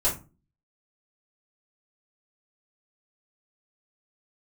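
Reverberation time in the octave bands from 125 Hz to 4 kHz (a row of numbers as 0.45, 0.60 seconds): 0.45, 0.50, 0.35, 0.30, 0.25, 0.20 seconds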